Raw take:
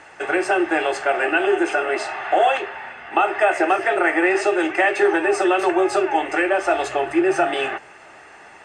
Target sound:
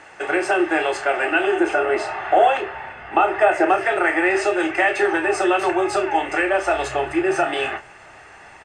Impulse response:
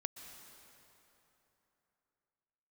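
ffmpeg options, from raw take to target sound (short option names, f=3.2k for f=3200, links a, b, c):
-filter_complex "[0:a]asubboost=boost=3:cutoff=140,asplit=2[a][b];[b]adelay=31,volume=-9dB[c];[a][c]amix=inputs=2:normalize=0,asettb=1/sr,asplit=3[d][e][f];[d]atrim=end=1.604[g];[e]atrim=start=1.6:end=3.78,asetpts=PTS-STARTPTS,afade=t=in:d=0.004:c=qsin,afade=t=out:st=2.176:d=0.004:c=qsin,tiltshelf=f=1.3k:g=4[h];[f]atrim=start=3.776[i];[g][h]acrossfade=d=0.004:c1=hsin:c2=qsin[j];[j][i]acrossfade=d=0.004:c1=qsin:c2=hsin"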